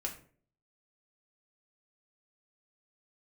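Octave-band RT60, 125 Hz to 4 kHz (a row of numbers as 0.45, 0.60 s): 0.65, 0.60, 0.55, 0.40, 0.40, 0.30 s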